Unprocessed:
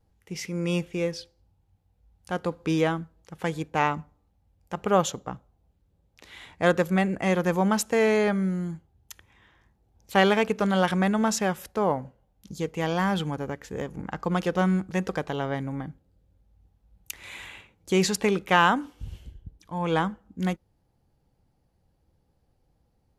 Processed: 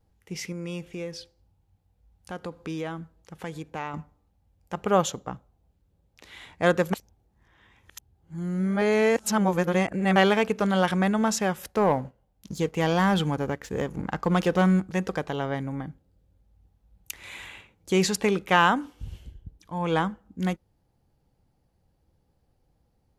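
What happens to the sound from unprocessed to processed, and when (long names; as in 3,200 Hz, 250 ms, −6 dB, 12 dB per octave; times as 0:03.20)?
0:00.52–0:03.94: downward compressor 2 to 1, threshold −36 dBFS
0:06.93–0:10.16: reverse
0:11.63–0:14.80: leveller curve on the samples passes 1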